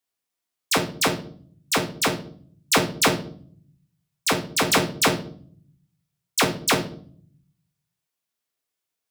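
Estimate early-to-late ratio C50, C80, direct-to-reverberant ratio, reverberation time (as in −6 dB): 11.0 dB, 16.0 dB, 3.5 dB, 0.50 s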